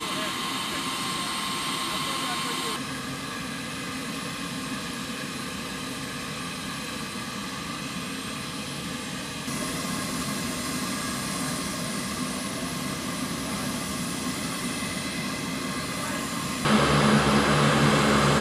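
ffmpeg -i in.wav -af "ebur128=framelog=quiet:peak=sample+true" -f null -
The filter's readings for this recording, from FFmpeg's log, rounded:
Integrated loudness:
  I:         -27.6 LUFS
  Threshold: -37.6 LUFS
Loudness range:
  LRA:         7.7 LU
  Threshold: -49.0 LUFS
  LRA low:   -32.1 LUFS
  LRA high:  -24.4 LUFS
Sample peak:
  Peak:       -8.5 dBFS
True peak:
  Peak:       -8.5 dBFS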